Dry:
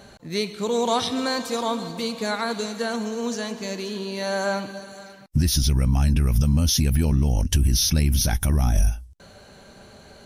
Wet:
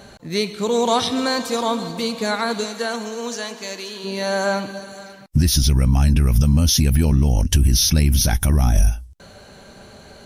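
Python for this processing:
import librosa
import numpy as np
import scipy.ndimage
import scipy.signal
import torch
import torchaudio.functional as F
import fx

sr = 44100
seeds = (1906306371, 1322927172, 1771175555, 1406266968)

y = fx.highpass(x, sr, hz=fx.line((2.63, 310.0), (4.03, 1000.0)), slope=6, at=(2.63, 4.03), fade=0.02)
y = y * librosa.db_to_amplitude(4.0)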